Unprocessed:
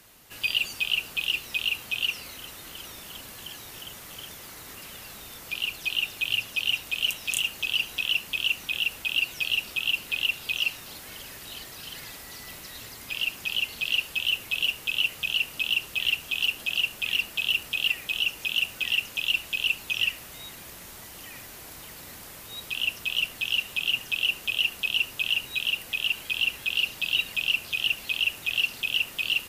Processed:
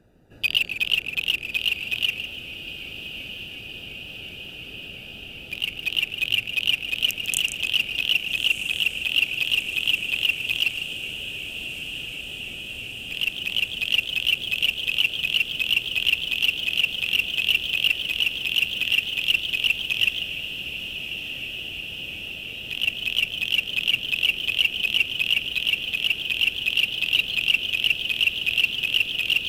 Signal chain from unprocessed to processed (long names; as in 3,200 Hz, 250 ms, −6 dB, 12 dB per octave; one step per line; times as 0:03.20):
adaptive Wiener filter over 41 samples
feedback delay with all-pass diffusion 1,287 ms, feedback 79%, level −11.5 dB
feedback echo with a swinging delay time 148 ms, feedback 37%, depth 162 cents, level −10 dB
level +5 dB